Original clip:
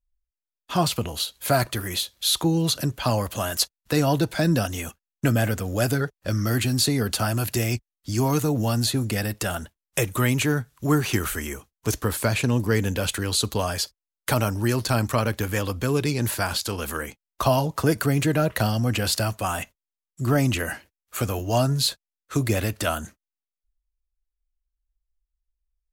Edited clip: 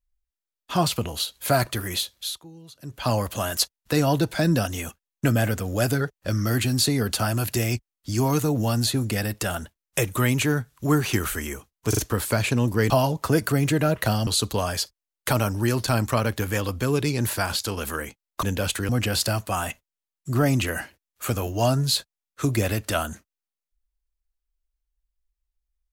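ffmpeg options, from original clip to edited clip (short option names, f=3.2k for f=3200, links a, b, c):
-filter_complex "[0:a]asplit=9[a][b][c][d][e][f][g][h][i];[a]atrim=end=2.39,asetpts=PTS-STARTPTS,afade=t=out:st=2.09:d=0.3:silence=0.0668344[j];[b]atrim=start=2.39:end=2.81,asetpts=PTS-STARTPTS,volume=-23.5dB[k];[c]atrim=start=2.81:end=11.932,asetpts=PTS-STARTPTS,afade=t=in:d=0.3:silence=0.0668344[l];[d]atrim=start=11.888:end=11.932[m];[e]atrim=start=11.888:end=12.822[n];[f]atrim=start=17.438:end=18.812[o];[g]atrim=start=13.278:end=17.442[p];[h]atrim=start=12.818:end=13.282[q];[i]atrim=start=18.808[r];[j][k][l]concat=n=3:v=0:a=1[s];[s][m]acrossfade=d=0.004:c1=hsin:c2=hsin[t];[t][n]acrossfade=d=0.004:c1=hsin:c2=hsin[u];[u][o]acrossfade=d=0.004:c1=hsin:c2=hsin[v];[v][p]acrossfade=d=0.004:c1=hsin:c2=hsin[w];[w][q]acrossfade=d=0.004:c1=hsin:c2=hsin[x];[x][r]acrossfade=d=0.004:c1=hsin:c2=hsin"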